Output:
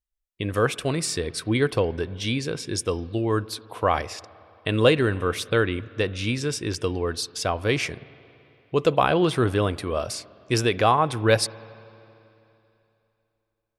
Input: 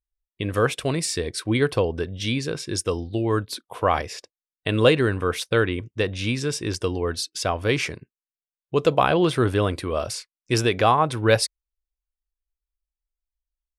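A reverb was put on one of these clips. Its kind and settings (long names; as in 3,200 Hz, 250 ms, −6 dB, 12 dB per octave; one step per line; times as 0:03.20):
spring reverb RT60 3 s, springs 49/55 ms, chirp 40 ms, DRR 19.5 dB
level −1 dB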